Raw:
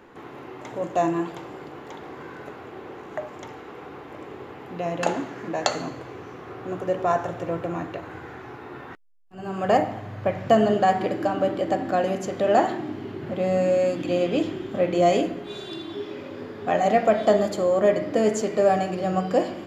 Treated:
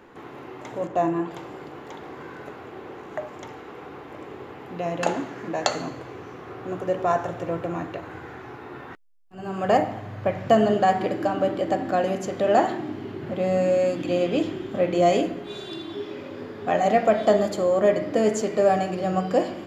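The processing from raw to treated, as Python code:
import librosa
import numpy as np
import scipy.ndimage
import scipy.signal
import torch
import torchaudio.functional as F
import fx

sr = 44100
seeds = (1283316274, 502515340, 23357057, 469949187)

y = fx.high_shelf(x, sr, hz=3300.0, db=-11.0, at=(0.87, 1.31))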